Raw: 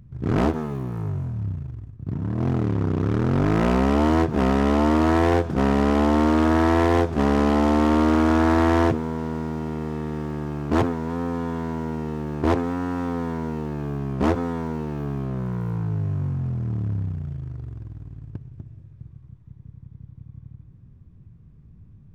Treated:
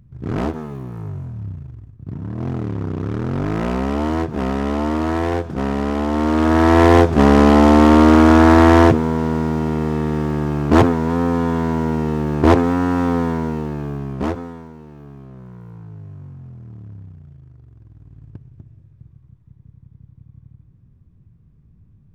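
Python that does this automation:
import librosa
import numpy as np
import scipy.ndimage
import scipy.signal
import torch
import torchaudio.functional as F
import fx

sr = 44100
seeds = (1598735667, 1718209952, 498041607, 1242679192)

y = fx.gain(x, sr, db=fx.line((6.07, -1.5), (6.88, 8.5), (13.15, 8.5), (14.22, -0.5), (14.73, -11.0), (17.68, -11.0), (18.23, -2.5)))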